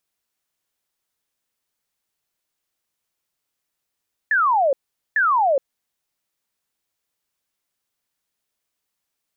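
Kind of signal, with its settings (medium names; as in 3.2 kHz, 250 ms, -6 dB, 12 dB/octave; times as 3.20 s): burst of laser zaps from 1.8 kHz, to 520 Hz, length 0.42 s sine, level -14.5 dB, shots 2, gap 0.43 s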